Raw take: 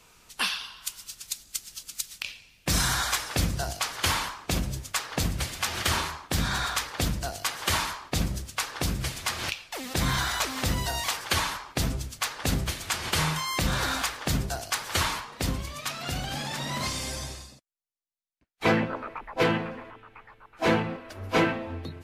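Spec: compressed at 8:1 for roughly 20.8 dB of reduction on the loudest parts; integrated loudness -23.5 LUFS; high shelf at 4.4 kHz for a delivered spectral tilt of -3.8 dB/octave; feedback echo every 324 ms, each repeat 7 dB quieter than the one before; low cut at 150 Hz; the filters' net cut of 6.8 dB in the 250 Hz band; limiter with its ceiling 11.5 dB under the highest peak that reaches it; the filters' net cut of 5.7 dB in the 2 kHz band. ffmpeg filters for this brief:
-af "highpass=150,equalizer=f=250:t=o:g=-8.5,equalizer=f=2000:t=o:g=-6,highshelf=f=4400:g=-7,acompressor=threshold=0.00631:ratio=8,alimiter=level_in=4.47:limit=0.0631:level=0:latency=1,volume=0.224,aecho=1:1:324|648|972|1296|1620:0.447|0.201|0.0905|0.0407|0.0183,volume=15.8"

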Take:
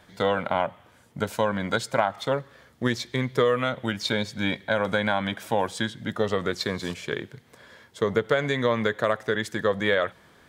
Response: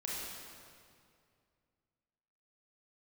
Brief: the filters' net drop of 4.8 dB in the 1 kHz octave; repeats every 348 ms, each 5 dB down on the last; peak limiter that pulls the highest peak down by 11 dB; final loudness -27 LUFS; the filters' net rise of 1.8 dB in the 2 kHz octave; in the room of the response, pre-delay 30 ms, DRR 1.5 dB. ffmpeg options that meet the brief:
-filter_complex "[0:a]equalizer=f=1000:t=o:g=-8.5,equalizer=f=2000:t=o:g=5.5,alimiter=limit=0.119:level=0:latency=1,aecho=1:1:348|696|1044|1392|1740|2088|2436:0.562|0.315|0.176|0.0988|0.0553|0.031|0.0173,asplit=2[s0][s1];[1:a]atrim=start_sample=2205,adelay=30[s2];[s1][s2]afir=irnorm=-1:irlink=0,volume=0.631[s3];[s0][s3]amix=inputs=2:normalize=0,volume=1.12"

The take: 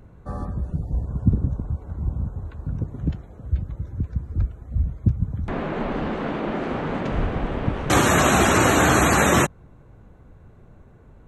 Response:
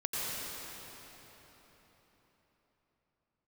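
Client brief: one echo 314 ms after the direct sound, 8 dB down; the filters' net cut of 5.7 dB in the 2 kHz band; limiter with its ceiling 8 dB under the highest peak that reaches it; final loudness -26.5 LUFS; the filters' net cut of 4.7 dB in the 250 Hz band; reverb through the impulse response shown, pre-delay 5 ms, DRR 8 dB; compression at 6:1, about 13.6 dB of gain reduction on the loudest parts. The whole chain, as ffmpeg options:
-filter_complex "[0:a]equalizer=f=250:t=o:g=-6.5,equalizer=f=2000:t=o:g=-7.5,acompressor=threshold=0.0355:ratio=6,alimiter=level_in=1.26:limit=0.0631:level=0:latency=1,volume=0.794,aecho=1:1:314:0.398,asplit=2[s0][s1];[1:a]atrim=start_sample=2205,adelay=5[s2];[s1][s2]afir=irnorm=-1:irlink=0,volume=0.188[s3];[s0][s3]amix=inputs=2:normalize=0,volume=2.82"

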